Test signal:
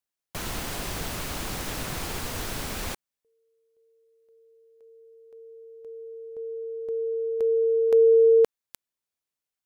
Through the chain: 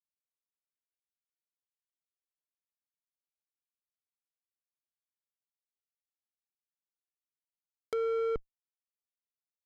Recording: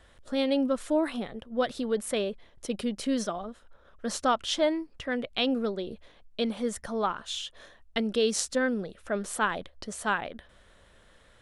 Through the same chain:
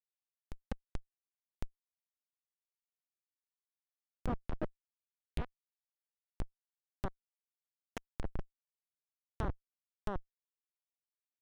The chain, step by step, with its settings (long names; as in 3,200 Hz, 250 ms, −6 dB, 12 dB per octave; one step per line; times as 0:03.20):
feedback delay that plays each chunk backwards 557 ms, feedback 48%, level −11 dB
low-pass filter 9,500 Hz 12 dB per octave
parametric band 260 Hz −8.5 dB 1.9 octaves
comparator with hysteresis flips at −20.5 dBFS
treble cut that deepens with the level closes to 1,300 Hz, closed at −36 dBFS
level +2 dB